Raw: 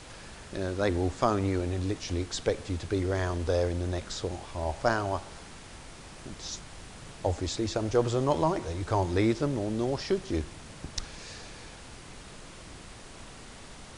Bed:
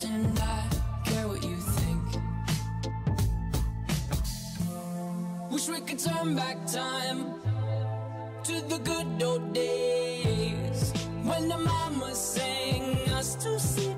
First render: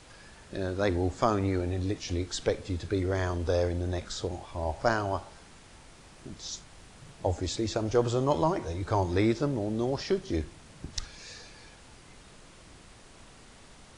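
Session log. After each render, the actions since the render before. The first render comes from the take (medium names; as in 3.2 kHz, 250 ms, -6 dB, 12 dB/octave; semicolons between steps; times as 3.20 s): noise print and reduce 6 dB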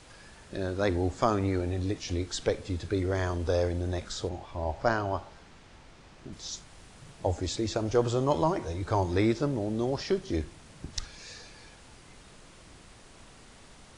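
4.29–6.33 s: distance through air 77 m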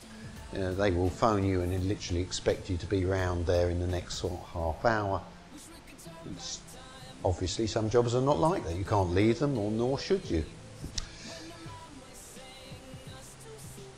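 add bed -18.5 dB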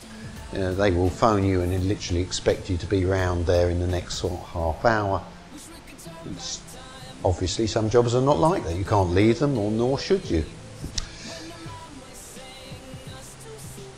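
trim +6.5 dB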